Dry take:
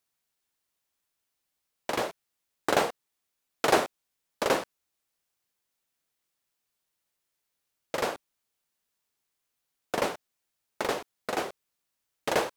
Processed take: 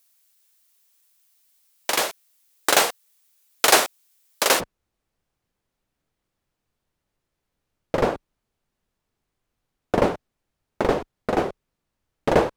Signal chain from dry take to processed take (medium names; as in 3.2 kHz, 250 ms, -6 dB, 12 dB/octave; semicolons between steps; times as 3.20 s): tilt EQ +3.5 dB/octave, from 4.59 s -3.5 dB/octave; trim +6 dB